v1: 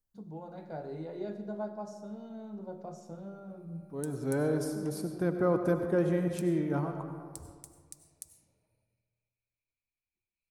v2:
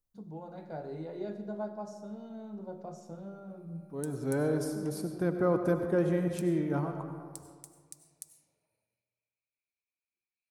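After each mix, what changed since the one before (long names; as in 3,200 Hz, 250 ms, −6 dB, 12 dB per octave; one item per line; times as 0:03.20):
background: add high-pass filter 520 Hz 6 dB per octave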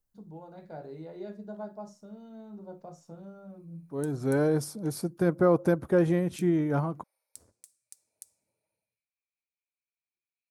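second voice +8.0 dB
reverb: off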